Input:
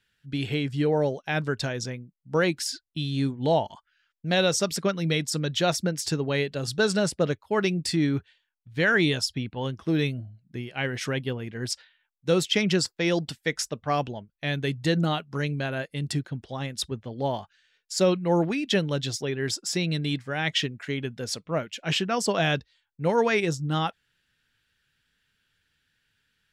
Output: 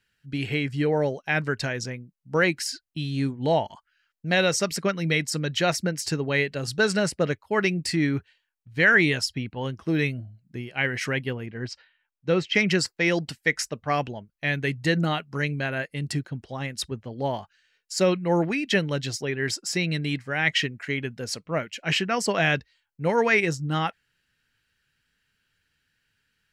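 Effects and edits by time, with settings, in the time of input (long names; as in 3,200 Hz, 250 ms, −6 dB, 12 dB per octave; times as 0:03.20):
0:11.46–0:12.55: high-frequency loss of the air 160 metres
whole clip: notch filter 3,500 Hz, Q 8.4; dynamic equaliser 2,000 Hz, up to +8 dB, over −45 dBFS, Q 1.9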